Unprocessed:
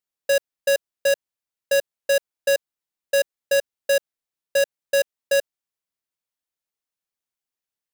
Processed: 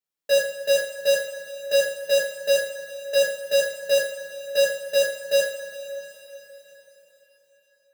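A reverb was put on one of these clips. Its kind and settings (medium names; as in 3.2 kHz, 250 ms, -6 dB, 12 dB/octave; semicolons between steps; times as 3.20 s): two-slope reverb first 0.47 s, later 4.5 s, from -18 dB, DRR -8.5 dB; trim -9 dB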